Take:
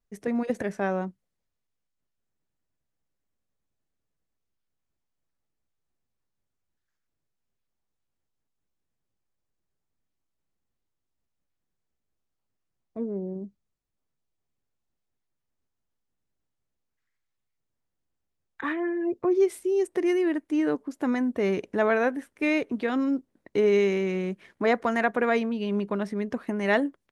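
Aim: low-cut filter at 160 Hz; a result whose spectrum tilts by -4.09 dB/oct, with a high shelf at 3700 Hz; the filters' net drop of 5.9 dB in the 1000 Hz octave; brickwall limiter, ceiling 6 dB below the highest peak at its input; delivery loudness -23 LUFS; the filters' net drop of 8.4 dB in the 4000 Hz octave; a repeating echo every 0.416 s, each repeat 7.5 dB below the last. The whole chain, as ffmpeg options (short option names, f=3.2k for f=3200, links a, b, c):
-af "highpass=160,equalizer=f=1k:t=o:g=-8.5,highshelf=f=3.7k:g=-5.5,equalizer=f=4k:t=o:g=-8.5,alimiter=limit=-20.5dB:level=0:latency=1,aecho=1:1:416|832|1248|1664|2080:0.422|0.177|0.0744|0.0312|0.0131,volume=6.5dB"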